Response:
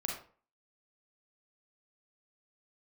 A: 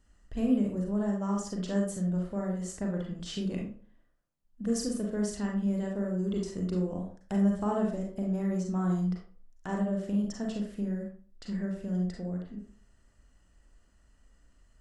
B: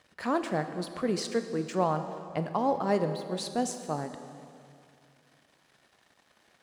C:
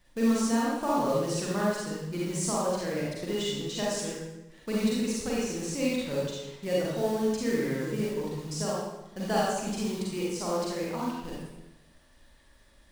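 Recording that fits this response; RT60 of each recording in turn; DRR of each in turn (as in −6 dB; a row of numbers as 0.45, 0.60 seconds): A; 0.45, 2.5, 1.0 seconds; −1.0, 8.5, −6.0 decibels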